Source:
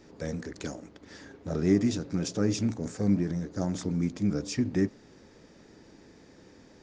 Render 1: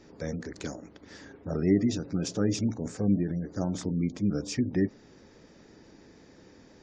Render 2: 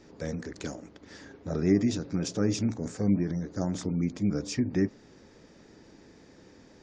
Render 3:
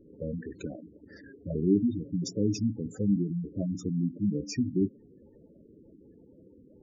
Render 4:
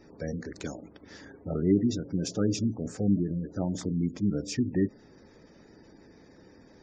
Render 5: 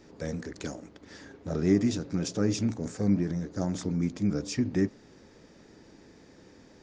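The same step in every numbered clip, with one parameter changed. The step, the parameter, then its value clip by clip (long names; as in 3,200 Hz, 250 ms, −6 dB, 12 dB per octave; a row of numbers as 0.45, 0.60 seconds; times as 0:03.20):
gate on every frequency bin, under each frame's peak: −35, −45, −10, −25, −60 decibels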